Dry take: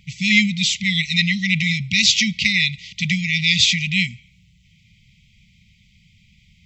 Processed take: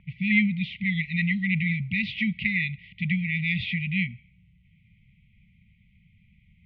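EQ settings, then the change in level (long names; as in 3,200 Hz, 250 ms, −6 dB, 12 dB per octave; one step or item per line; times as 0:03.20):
Bessel low-pass filter 1,600 Hz, order 6
high-frequency loss of the air 94 metres
low-shelf EQ 400 Hz −4 dB
0.0 dB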